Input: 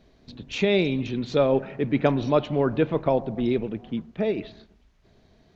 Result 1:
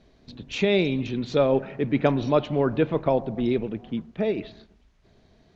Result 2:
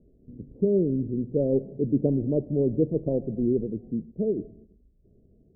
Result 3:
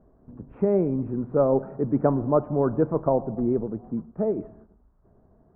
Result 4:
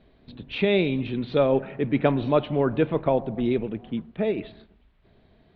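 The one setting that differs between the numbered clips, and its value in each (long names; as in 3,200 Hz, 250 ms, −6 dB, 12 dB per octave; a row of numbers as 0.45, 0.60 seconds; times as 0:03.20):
Butterworth low-pass, frequency: 11,000, 500, 1,300, 3,900 Hertz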